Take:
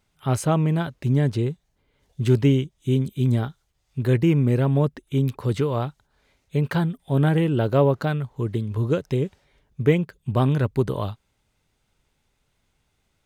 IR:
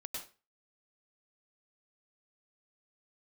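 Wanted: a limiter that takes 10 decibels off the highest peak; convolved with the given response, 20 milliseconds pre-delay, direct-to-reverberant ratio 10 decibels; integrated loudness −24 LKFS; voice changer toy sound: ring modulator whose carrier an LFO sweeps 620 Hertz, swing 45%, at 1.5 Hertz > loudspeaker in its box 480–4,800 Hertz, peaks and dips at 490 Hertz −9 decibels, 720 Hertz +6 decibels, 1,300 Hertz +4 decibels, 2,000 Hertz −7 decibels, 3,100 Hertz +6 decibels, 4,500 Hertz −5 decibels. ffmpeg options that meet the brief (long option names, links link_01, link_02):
-filter_complex "[0:a]alimiter=limit=-17dB:level=0:latency=1,asplit=2[link_01][link_02];[1:a]atrim=start_sample=2205,adelay=20[link_03];[link_02][link_03]afir=irnorm=-1:irlink=0,volume=-8.5dB[link_04];[link_01][link_04]amix=inputs=2:normalize=0,aeval=exprs='val(0)*sin(2*PI*620*n/s+620*0.45/1.5*sin(2*PI*1.5*n/s))':channel_layout=same,highpass=480,equalizer=frequency=490:width_type=q:width=4:gain=-9,equalizer=frequency=720:width_type=q:width=4:gain=6,equalizer=frequency=1300:width_type=q:width=4:gain=4,equalizer=frequency=2000:width_type=q:width=4:gain=-7,equalizer=frequency=3100:width_type=q:width=4:gain=6,equalizer=frequency=4500:width_type=q:width=4:gain=-5,lowpass=frequency=4800:width=0.5412,lowpass=frequency=4800:width=1.3066,volume=4.5dB"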